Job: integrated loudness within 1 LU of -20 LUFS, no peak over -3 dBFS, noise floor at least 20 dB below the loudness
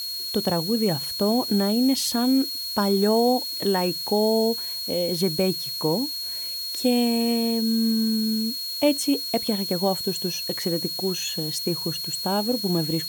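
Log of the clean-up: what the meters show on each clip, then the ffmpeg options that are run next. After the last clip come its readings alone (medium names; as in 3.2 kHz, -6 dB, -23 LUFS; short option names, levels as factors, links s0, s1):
steady tone 4.3 kHz; tone level -29 dBFS; noise floor -31 dBFS; noise floor target -44 dBFS; loudness -23.5 LUFS; peak level -8.5 dBFS; loudness target -20.0 LUFS
-> -af "bandreject=f=4300:w=30"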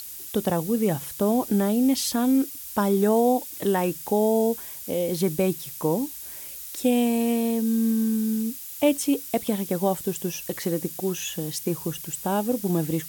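steady tone not found; noise floor -38 dBFS; noise floor target -45 dBFS
-> -af "afftdn=nr=7:nf=-38"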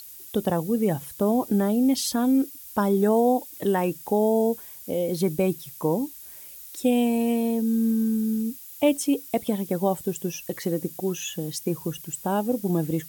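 noise floor -43 dBFS; noise floor target -45 dBFS
-> -af "afftdn=nr=6:nf=-43"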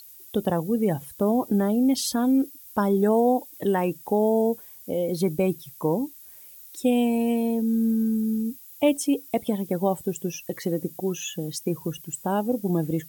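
noise floor -47 dBFS; loudness -25.0 LUFS; peak level -9.5 dBFS; loudness target -20.0 LUFS
-> -af "volume=1.78"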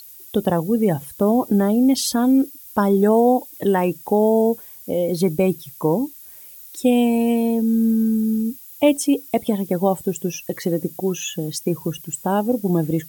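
loudness -20.0 LUFS; peak level -4.5 dBFS; noise floor -42 dBFS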